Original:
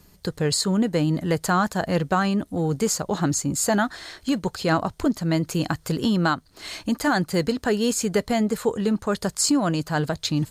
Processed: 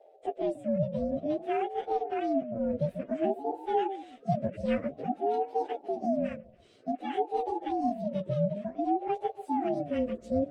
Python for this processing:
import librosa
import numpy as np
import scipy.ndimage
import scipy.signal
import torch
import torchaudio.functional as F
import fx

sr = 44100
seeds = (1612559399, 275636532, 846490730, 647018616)

p1 = fx.partial_stretch(x, sr, pct=124)
p2 = fx.curve_eq(p1, sr, hz=(270.0, 410.0, 2100.0), db=(0, -29, -10))
p3 = fx.rider(p2, sr, range_db=4, speed_s=0.5)
p4 = scipy.signal.sosfilt(scipy.signal.butter(2, 3100.0, 'lowpass', fs=sr, output='sos'), p3)
p5 = p4 + fx.echo_stepped(p4, sr, ms=140, hz=230.0, octaves=0.7, feedback_pct=70, wet_db=-10, dry=0)
y = fx.ring_lfo(p5, sr, carrier_hz=490.0, swing_pct=25, hz=0.54)